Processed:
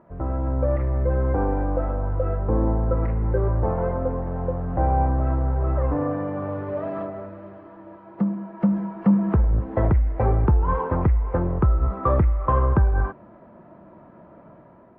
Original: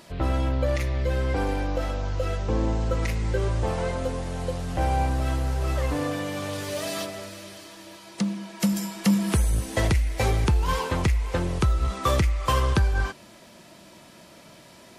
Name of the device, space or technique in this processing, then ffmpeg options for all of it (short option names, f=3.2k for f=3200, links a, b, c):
action camera in a waterproof case: -af "lowpass=f=1.3k:w=0.5412,lowpass=f=1.3k:w=1.3066,dynaudnorm=f=210:g=5:m=6dB,volume=-2.5dB" -ar 22050 -c:a aac -b:a 48k